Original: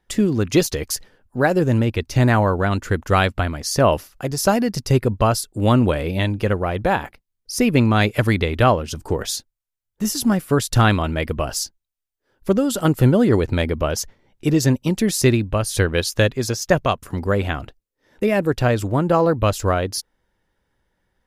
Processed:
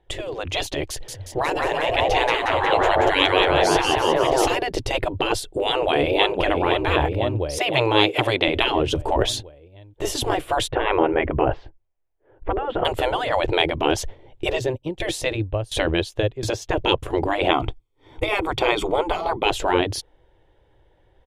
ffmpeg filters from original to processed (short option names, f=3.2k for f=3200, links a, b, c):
-filter_complex "[0:a]asettb=1/sr,asplit=3[a][b][c];[a]atrim=end=0.904[d];[b]atrim=start=0.9:end=4.55,asetpts=PTS-STARTPTS,afade=t=in:d=0.004:c=qsin,afade=t=out:st=3.646:d=0.004:c=qsin,asplit=9[e][f][g][h][i][j][k][l][m];[f]adelay=180,afreqshift=84,volume=-5dB[n];[g]adelay=360,afreqshift=168,volume=-9.9dB[o];[h]adelay=540,afreqshift=252,volume=-14.8dB[p];[i]adelay=720,afreqshift=336,volume=-19.6dB[q];[j]adelay=900,afreqshift=420,volume=-24.5dB[r];[k]adelay=1080,afreqshift=504,volume=-29.4dB[s];[l]adelay=1260,afreqshift=588,volume=-34.3dB[t];[m]adelay=1440,afreqshift=672,volume=-39.2dB[u];[e][n][o][p][q][r][s][t][u]amix=inputs=9:normalize=0,atrim=end_sample=160965[v];[c]atrim=start=4.546[w];[d][v]acrossfade=d=0.004:c1=hsin:c2=qsin[x];[x][w]acrossfade=d=0.004:c1=qsin:c2=hsin,asplit=2[y][z];[z]afade=t=in:st=5.48:d=0.01,afade=t=out:st=6.36:d=0.01,aecho=0:1:510|1020|1530|2040|2550|3060|3570:0.316228|0.189737|0.113842|0.0683052|0.0409831|0.0245899|0.0147539[aa];[y][aa]amix=inputs=2:normalize=0,asettb=1/sr,asplit=3[ab][ac][ad];[ab]atrim=end=7.584[ae];[ac]atrim=start=7.58:end=8.48,asetpts=PTS-STARTPTS,afade=t=in:d=0.004:c=qsin,afade=t=out:st=0.896:d=0.004:c=qsin,highpass=410[af];[ad]atrim=start=8.476[ag];[ae][af]acrossfade=d=0.004:c1=hsin:c2=qsin[ah];[ah][ag]acrossfade=d=0.004:c1=qsin:c2=hsin,asettb=1/sr,asplit=3[ai][aj][ak];[ai]atrim=end=10.684[al];[aj]atrim=start=10.68:end=12.85,asetpts=PTS-STARTPTS,afade=t=in:d=0.004:c=qsin,afade=t=out:st=2.166:d=0.004:c=qsin,lowpass=f=2.1k:w=0.5412,lowpass=f=2.1k:w=1.3066[am];[ak]atrim=start=12.846[an];[al][am]acrossfade=d=0.004:c1=hsin:c2=qsin[ao];[ao][an]acrossfade=d=0.004:c1=qsin:c2=hsin,asplit=3[ap][aq][ar];[ap]afade=t=out:st=14.58:d=0.02[as];[aq]aeval=exprs='val(0)*pow(10,-21*if(lt(mod(1.4*n/s,1),2*abs(1.4)/1000),1-mod(1.4*n/s,1)/(2*abs(1.4)/1000),(mod(1.4*n/s,1)-2*abs(1.4)/1000)/(1-2*abs(1.4)/1000))/20)':c=same,afade=t=in:st=14.58:d=0.02,afade=t=out:st=16.77:d=0.02[at];[ar]afade=t=in:st=16.77:d=0.02[au];[as][at][au]amix=inputs=3:normalize=0,asettb=1/sr,asplit=3[av][aw][ax];[av]atrim=end=17.514[ay];[aw]atrim=start=17.51:end=19.46,asetpts=PTS-STARTPTS,afade=t=in:d=0.004:c=qsin,afade=t=out:st=1.946:d=0.004:c=qsin,aecho=1:1:0.9:0.7,atrim=end_sample=85995[az];[ax]atrim=start=19.456[ba];[ay][az]acrossfade=d=0.004:c1=hsin:c2=qsin[bb];[bb][ba]acrossfade=d=0.004:c1=qsin:c2=hsin,afftfilt=real='re*lt(hypot(re,im),0.251)':imag='im*lt(hypot(re,im),0.251)':win_size=1024:overlap=0.75,firequalizer=gain_entry='entry(120,0);entry(210,-16);entry(320,1);entry(720,1);entry(1300,-11);entry(3300,-3);entry(4900,-18);entry(8500,-16);entry(12000,-23)':delay=0.05:min_phase=1,dynaudnorm=f=270:g=9:m=5dB,volume=8dB"